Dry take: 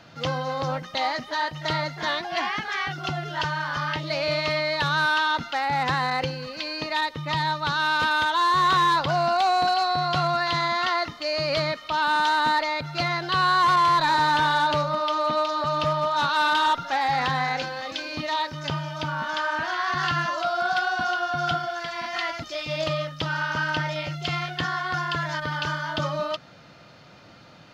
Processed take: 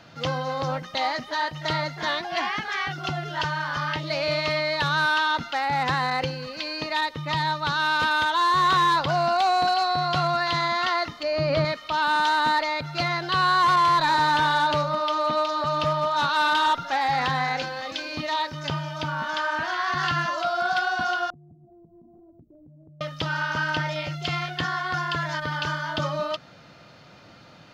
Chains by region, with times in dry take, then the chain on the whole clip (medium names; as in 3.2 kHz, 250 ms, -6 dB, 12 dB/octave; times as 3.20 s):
11.23–11.65 s: low-pass 2.3 kHz 6 dB/octave + bass shelf 450 Hz +8 dB + hum notches 60/120/180/240/300/360/420/480/540 Hz
21.30–23.01 s: inverse Chebyshev band-stop 1.7–7.5 kHz, stop band 80 dB + compression 12:1, threshold -48 dBFS
whole clip: none